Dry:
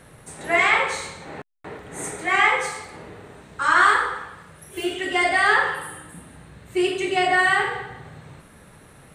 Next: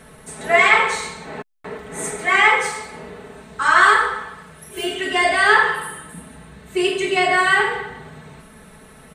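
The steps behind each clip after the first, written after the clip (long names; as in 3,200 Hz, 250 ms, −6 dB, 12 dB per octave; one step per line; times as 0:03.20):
comb filter 4.6 ms, depth 70%
level +2.5 dB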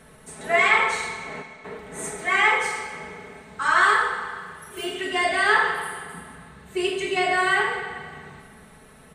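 convolution reverb RT60 2.1 s, pre-delay 33 ms, DRR 8 dB
level −5.5 dB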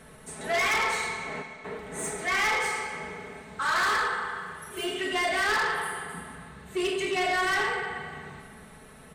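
soft clipping −22.5 dBFS, distortion −8 dB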